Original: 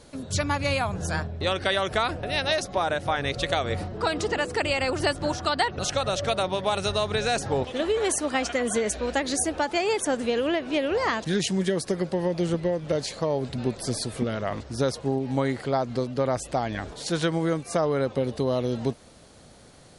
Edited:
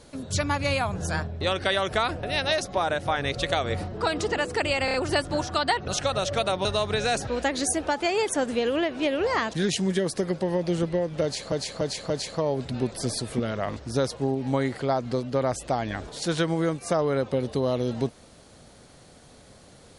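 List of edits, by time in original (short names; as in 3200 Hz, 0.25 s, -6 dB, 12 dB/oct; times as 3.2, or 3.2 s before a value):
4.85 stutter 0.03 s, 4 plays
6.56–6.86 cut
7.48–8.98 cut
12.94–13.23 loop, 4 plays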